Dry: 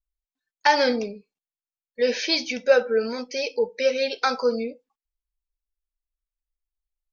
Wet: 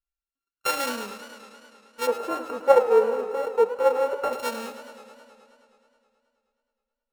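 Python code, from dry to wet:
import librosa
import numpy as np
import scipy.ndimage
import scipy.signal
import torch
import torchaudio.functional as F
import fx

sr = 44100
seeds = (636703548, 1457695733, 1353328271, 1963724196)

y = np.r_[np.sort(x[:len(x) // 32 * 32].reshape(-1, 32), axis=1).ravel(), x[len(x) // 32 * 32:]]
y = fx.curve_eq(y, sr, hz=(280.0, 440.0, 4100.0), db=(0, 15, -13), at=(2.07, 4.33))
y = fx.echo_warbled(y, sr, ms=106, feedback_pct=77, rate_hz=2.8, cents=124, wet_db=-13.0)
y = y * librosa.db_to_amplitude(-8.0)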